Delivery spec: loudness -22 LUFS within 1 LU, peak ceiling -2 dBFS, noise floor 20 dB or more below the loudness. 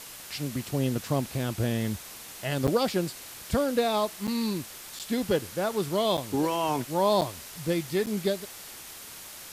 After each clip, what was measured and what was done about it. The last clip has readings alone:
dropouts 6; longest dropout 7.8 ms; noise floor -44 dBFS; noise floor target -49 dBFS; loudness -28.5 LUFS; peak -13.5 dBFS; loudness target -22.0 LUFS
-> interpolate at 2.67/4.27/4.99/6.17/7.21/8.06, 7.8 ms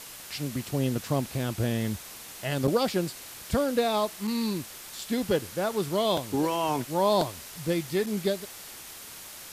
dropouts 0; noise floor -44 dBFS; noise floor target -49 dBFS
-> denoiser 6 dB, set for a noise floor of -44 dBFS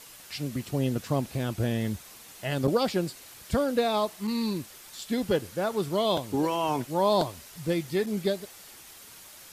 noise floor -49 dBFS; loudness -29.0 LUFS; peak -14.0 dBFS; loudness target -22.0 LUFS
-> gain +7 dB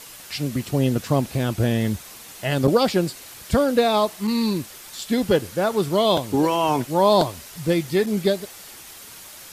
loudness -22.0 LUFS; peak -7.0 dBFS; noise floor -42 dBFS

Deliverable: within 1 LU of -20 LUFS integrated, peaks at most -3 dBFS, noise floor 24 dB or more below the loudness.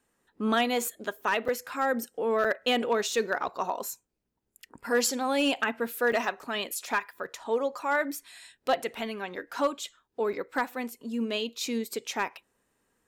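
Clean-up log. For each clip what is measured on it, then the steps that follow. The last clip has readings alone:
clipped 0.2%; flat tops at -17.5 dBFS; dropouts 5; longest dropout 5.5 ms; loudness -29.5 LUFS; peak -17.5 dBFS; loudness target -20.0 LUFS
-> clip repair -17.5 dBFS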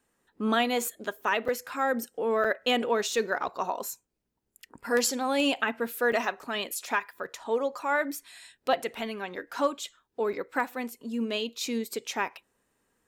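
clipped 0.0%; dropouts 5; longest dropout 5.5 ms
-> interpolate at 1.48/2.44/3.48/6.12/10.33, 5.5 ms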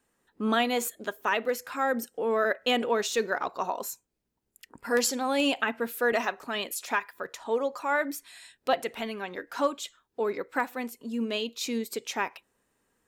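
dropouts 0; loudness -29.5 LUFS; peak -10.5 dBFS; loudness target -20.0 LUFS
-> gain +9.5 dB; limiter -3 dBFS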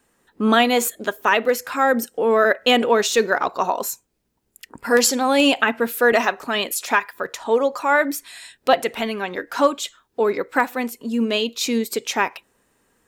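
loudness -20.0 LUFS; peak -3.0 dBFS; noise floor -69 dBFS

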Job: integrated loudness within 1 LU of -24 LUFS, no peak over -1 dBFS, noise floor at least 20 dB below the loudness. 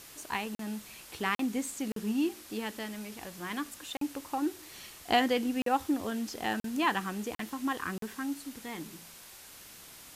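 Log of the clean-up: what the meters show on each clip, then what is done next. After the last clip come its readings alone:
dropouts 8; longest dropout 43 ms; noise floor -51 dBFS; noise floor target -54 dBFS; loudness -33.5 LUFS; peak -12.5 dBFS; loudness target -24.0 LUFS
-> interpolate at 0.55/1.35/1.92/3.97/5.62/6.6/7.35/7.98, 43 ms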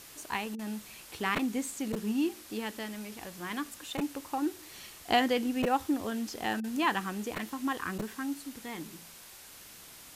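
dropouts 0; noise floor -51 dBFS; noise floor target -54 dBFS
-> denoiser 6 dB, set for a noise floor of -51 dBFS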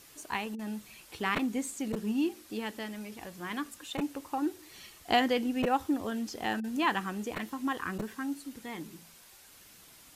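noise floor -56 dBFS; loudness -33.5 LUFS; peak -12.5 dBFS; loudness target -24.0 LUFS
-> gain +9.5 dB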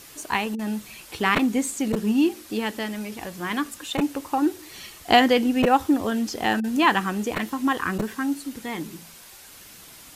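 loudness -24.0 LUFS; peak -3.0 dBFS; noise floor -46 dBFS

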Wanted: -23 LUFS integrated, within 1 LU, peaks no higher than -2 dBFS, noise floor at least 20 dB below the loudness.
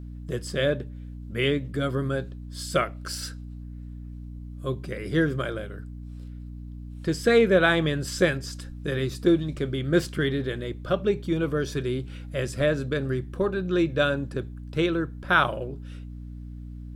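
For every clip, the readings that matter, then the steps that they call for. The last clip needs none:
hum 60 Hz; harmonics up to 300 Hz; hum level -36 dBFS; loudness -26.5 LUFS; peak -6.5 dBFS; loudness target -23.0 LUFS
-> notches 60/120/180/240/300 Hz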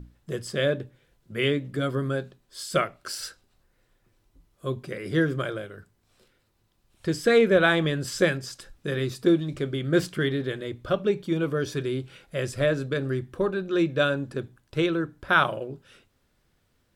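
hum none; loudness -26.5 LUFS; peak -7.0 dBFS; loudness target -23.0 LUFS
-> gain +3.5 dB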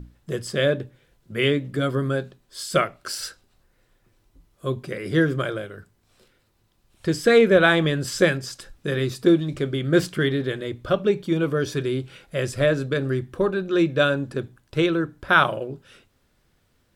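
loudness -23.0 LUFS; peak -3.5 dBFS; noise floor -66 dBFS

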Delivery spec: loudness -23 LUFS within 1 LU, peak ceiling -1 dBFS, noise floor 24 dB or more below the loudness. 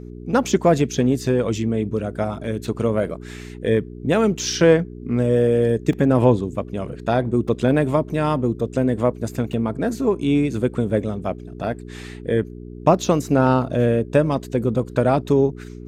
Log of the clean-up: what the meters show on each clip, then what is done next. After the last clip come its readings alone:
dropouts 3; longest dropout 2.4 ms; hum 60 Hz; harmonics up to 420 Hz; hum level -35 dBFS; loudness -20.5 LUFS; peak -3.0 dBFS; loudness target -23.0 LUFS
-> interpolate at 5.93/7.48/9.53, 2.4 ms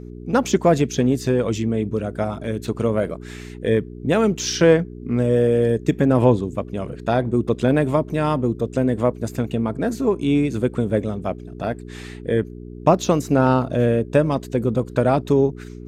dropouts 0; hum 60 Hz; harmonics up to 420 Hz; hum level -35 dBFS
-> de-hum 60 Hz, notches 7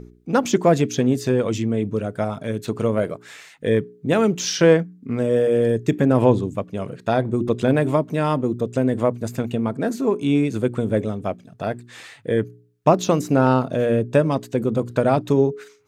hum none; loudness -21.0 LUFS; peak -3.0 dBFS; loudness target -23.0 LUFS
-> gain -2 dB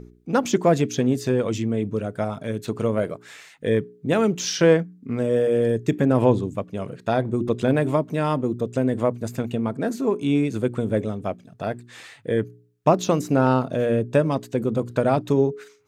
loudness -23.0 LUFS; peak -5.0 dBFS; noise floor -53 dBFS

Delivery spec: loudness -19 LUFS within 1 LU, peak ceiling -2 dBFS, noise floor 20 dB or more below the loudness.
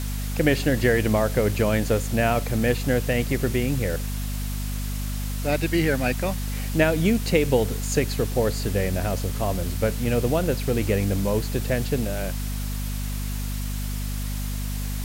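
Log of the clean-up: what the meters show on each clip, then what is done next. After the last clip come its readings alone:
hum 50 Hz; harmonics up to 250 Hz; hum level -26 dBFS; noise floor -28 dBFS; noise floor target -45 dBFS; loudness -24.5 LUFS; peak -4.5 dBFS; loudness target -19.0 LUFS
-> notches 50/100/150/200/250 Hz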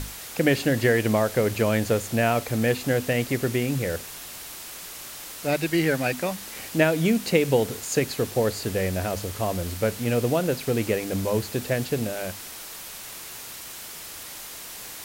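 hum none; noise floor -39 dBFS; noise floor target -45 dBFS
-> denoiser 6 dB, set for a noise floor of -39 dBFS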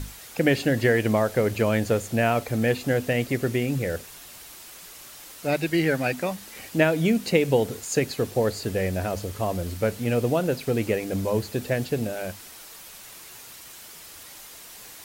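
noise floor -44 dBFS; noise floor target -45 dBFS
-> denoiser 6 dB, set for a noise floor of -44 dBFS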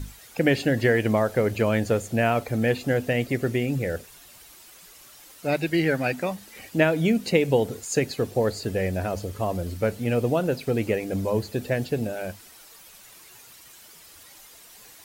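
noise floor -49 dBFS; loudness -25.0 LUFS; peak -4.0 dBFS; loudness target -19.0 LUFS
-> gain +6 dB; limiter -2 dBFS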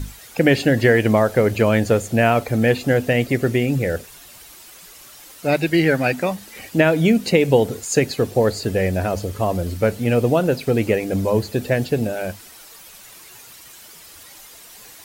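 loudness -19.0 LUFS; peak -2.0 dBFS; noise floor -43 dBFS

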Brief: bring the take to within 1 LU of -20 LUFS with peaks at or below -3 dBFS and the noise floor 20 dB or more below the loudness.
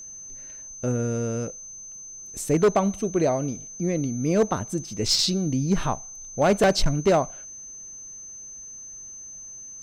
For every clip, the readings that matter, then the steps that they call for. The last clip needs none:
clipped 0.7%; flat tops at -13.5 dBFS; steady tone 6200 Hz; tone level -38 dBFS; loudness -24.0 LUFS; peak -13.5 dBFS; loudness target -20.0 LUFS
-> clip repair -13.5 dBFS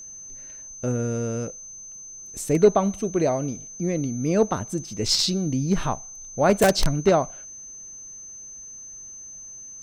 clipped 0.0%; steady tone 6200 Hz; tone level -38 dBFS
-> notch 6200 Hz, Q 30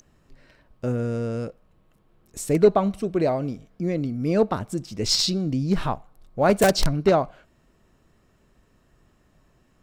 steady tone none; loudness -23.5 LUFS; peak -4.5 dBFS; loudness target -20.0 LUFS
-> gain +3.5 dB; limiter -3 dBFS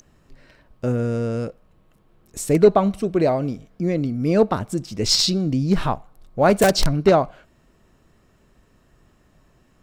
loudness -20.5 LUFS; peak -3.0 dBFS; noise floor -59 dBFS

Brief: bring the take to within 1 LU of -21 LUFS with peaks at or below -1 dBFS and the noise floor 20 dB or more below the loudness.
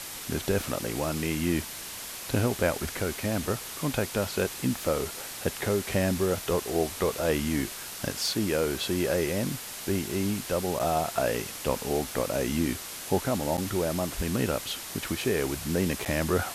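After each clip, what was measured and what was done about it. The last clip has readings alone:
dropouts 3; longest dropout 8.2 ms; noise floor -39 dBFS; noise floor target -49 dBFS; loudness -29.0 LUFS; peak -11.0 dBFS; loudness target -21.0 LUFS
-> interpolate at 10.79/13.57/16.05, 8.2 ms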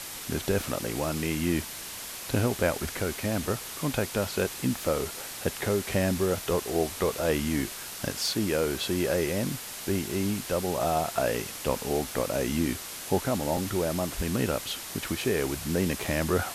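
dropouts 0; noise floor -39 dBFS; noise floor target -49 dBFS
-> denoiser 10 dB, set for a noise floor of -39 dBFS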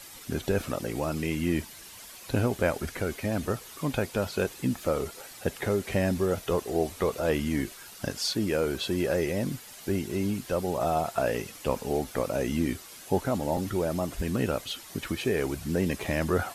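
noise floor -47 dBFS; noise floor target -50 dBFS
-> denoiser 6 dB, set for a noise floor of -47 dBFS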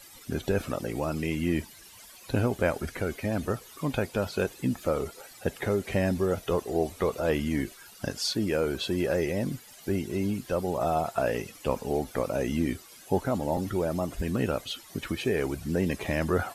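noise floor -51 dBFS; loudness -30.0 LUFS; peak -12.0 dBFS; loudness target -21.0 LUFS
-> gain +9 dB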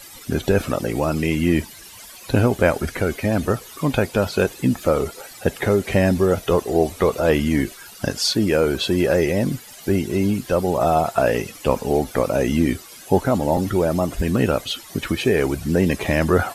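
loudness -21.0 LUFS; peak -3.0 dBFS; noise floor -42 dBFS

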